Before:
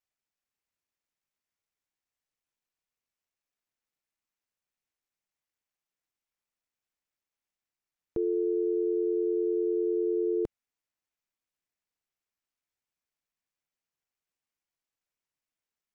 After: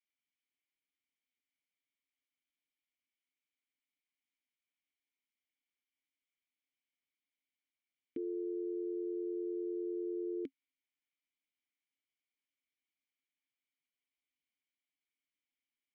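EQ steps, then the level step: vowel filter i; bass shelf 490 Hz -11.5 dB; +12.0 dB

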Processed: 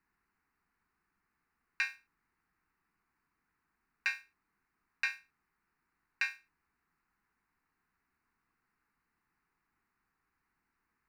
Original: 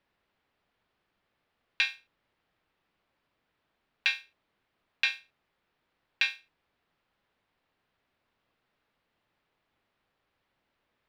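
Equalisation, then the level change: peaking EQ 110 Hz -9 dB 0.48 oct; static phaser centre 1.4 kHz, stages 4; 0.0 dB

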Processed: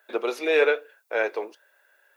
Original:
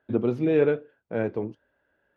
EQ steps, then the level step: high-pass 420 Hz 24 dB/octave; tilt EQ +4.5 dB/octave; band-stop 3.1 kHz, Q 11; +8.0 dB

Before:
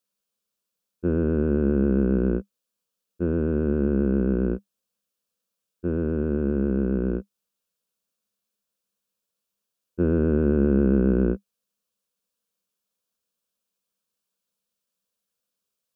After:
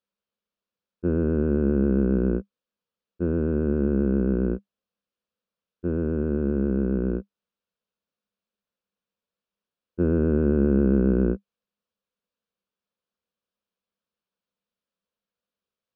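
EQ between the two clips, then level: distance through air 230 m; 0.0 dB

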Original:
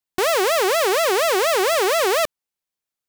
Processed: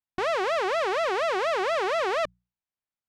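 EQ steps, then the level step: tape spacing loss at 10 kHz 25 dB; peaking EQ 420 Hz -6.5 dB 0.96 oct; hum notches 60/120/180 Hz; -2.0 dB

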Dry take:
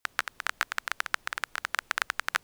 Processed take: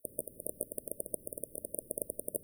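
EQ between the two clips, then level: brick-wall FIR band-stop 630–8800 Hz; bass shelf 69 Hz -11.5 dB; +9.5 dB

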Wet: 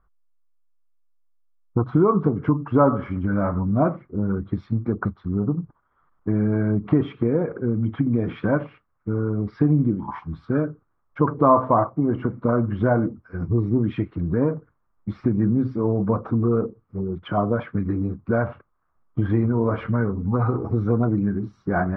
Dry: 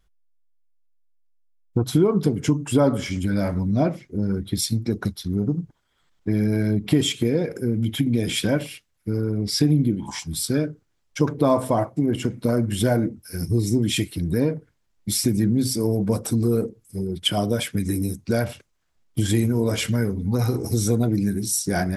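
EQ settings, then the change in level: resonant low-pass 1.2 kHz, resonance Q 4.9; distance through air 270 m; 0.0 dB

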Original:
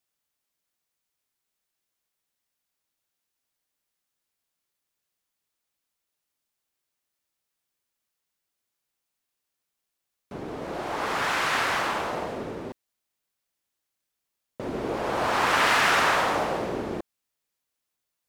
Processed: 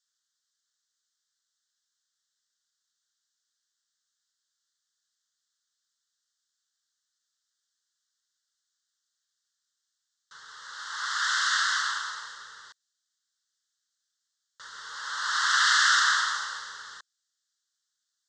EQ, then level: inverse Chebyshev high-pass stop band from 750 Hz, stop band 40 dB; Butterworth band-stop 2.4 kHz, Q 1.3; steep low-pass 7.7 kHz 48 dB/octave; +7.5 dB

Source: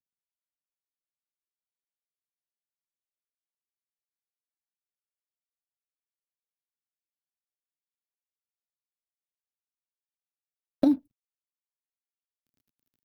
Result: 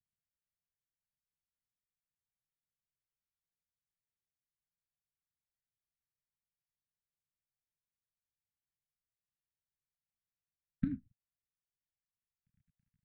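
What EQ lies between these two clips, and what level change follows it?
inverse Chebyshev band-stop 340–1000 Hz, stop band 50 dB; low-pass 1.4 kHz 24 dB/octave; +10.0 dB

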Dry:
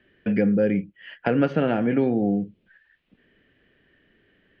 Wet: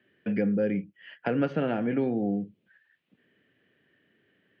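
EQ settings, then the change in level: high-pass 100 Hz 24 dB/octave; -5.5 dB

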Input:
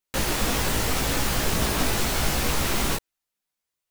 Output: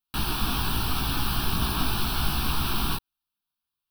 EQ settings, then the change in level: static phaser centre 2 kHz, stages 6; 0.0 dB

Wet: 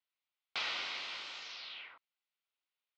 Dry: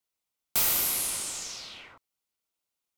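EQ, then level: Bessel low-pass 2.2 kHz, order 8; differentiator; +12.5 dB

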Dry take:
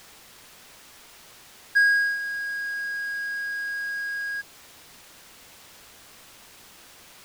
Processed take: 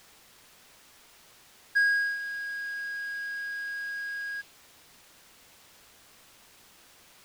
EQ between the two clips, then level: dynamic bell 2.9 kHz, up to +6 dB, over -43 dBFS, Q 1.1; -7.0 dB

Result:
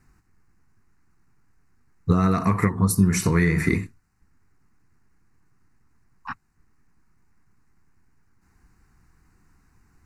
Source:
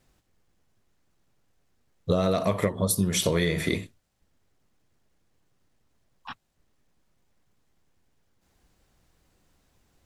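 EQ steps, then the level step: treble shelf 7.7 kHz -12 dB; static phaser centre 1.4 kHz, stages 4; +8.5 dB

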